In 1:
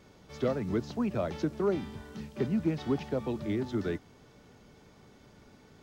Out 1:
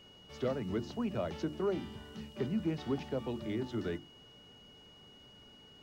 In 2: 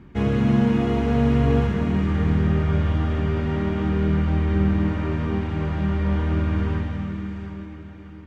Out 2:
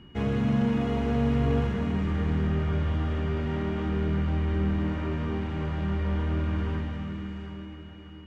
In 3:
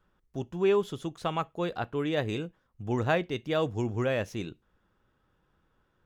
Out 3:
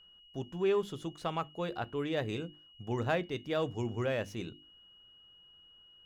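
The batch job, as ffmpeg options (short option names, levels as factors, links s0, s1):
-filter_complex "[0:a]bandreject=f=50:t=h:w=6,bandreject=f=100:t=h:w=6,bandreject=f=150:t=h:w=6,bandreject=f=200:t=h:w=6,bandreject=f=250:t=h:w=6,bandreject=f=300:t=h:w=6,bandreject=f=350:t=h:w=6,asplit=2[s0][s1];[s1]asoftclip=type=tanh:threshold=0.0631,volume=0.501[s2];[s0][s2]amix=inputs=2:normalize=0,aeval=exprs='val(0)+0.00316*sin(2*PI*2900*n/s)':c=same,volume=0.447"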